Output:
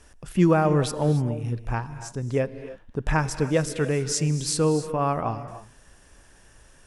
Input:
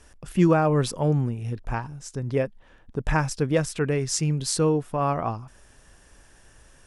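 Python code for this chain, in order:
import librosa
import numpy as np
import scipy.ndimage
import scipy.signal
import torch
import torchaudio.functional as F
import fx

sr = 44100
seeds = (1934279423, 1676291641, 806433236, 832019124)

y = fx.rev_gated(x, sr, seeds[0], gate_ms=320, shape='rising', drr_db=11.5)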